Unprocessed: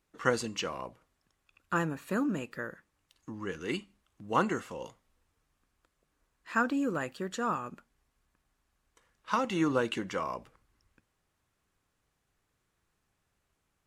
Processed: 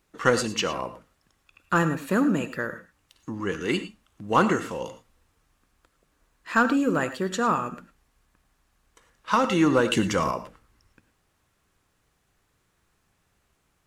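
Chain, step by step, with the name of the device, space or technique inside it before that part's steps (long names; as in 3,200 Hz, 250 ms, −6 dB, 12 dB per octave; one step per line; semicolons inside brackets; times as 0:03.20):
parallel distortion (in parallel at −5.5 dB: hard clipping −25 dBFS, distortion −11 dB)
0:09.90–0:10.31: on the sum: bass and treble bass +9 dB, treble +8 dB
reverb whose tail is shaped and stops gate 130 ms rising, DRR 11.5 dB
level +4.5 dB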